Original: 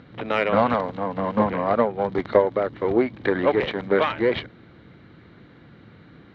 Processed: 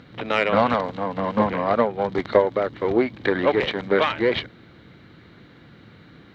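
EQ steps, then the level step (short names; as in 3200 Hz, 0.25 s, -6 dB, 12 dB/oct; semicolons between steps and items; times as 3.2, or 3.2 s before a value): high shelf 3400 Hz +10 dB; 0.0 dB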